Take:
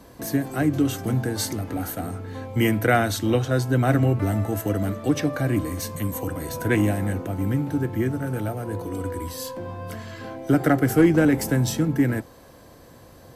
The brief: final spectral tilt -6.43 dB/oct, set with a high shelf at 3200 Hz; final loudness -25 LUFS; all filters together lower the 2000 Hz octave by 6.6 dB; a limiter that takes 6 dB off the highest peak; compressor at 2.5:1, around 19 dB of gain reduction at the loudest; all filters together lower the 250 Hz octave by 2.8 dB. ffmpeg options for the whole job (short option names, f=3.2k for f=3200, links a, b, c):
-af "equalizer=f=250:t=o:g=-3.5,equalizer=f=2k:t=o:g=-7.5,highshelf=f=3.2k:g=-5.5,acompressor=threshold=-44dB:ratio=2.5,volume=17dB,alimiter=limit=-14.5dB:level=0:latency=1"